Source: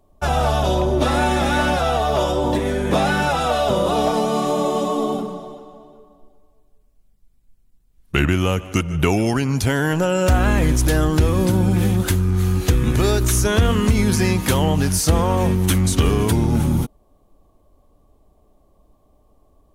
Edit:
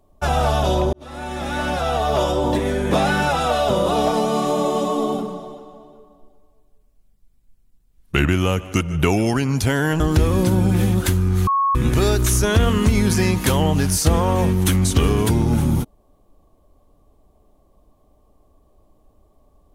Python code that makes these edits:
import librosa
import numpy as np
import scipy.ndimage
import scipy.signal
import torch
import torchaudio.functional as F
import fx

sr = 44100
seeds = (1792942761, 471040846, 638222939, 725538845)

y = fx.edit(x, sr, fx.fade_in_span(start_s=0.93, length_s=1.21),
    fx.cut(start_s=10.0, length_s=1.02),
    fx.bleep(start_s=12.49, length_s=0.28, hz=1100.0, db=-15.0), tone=tone)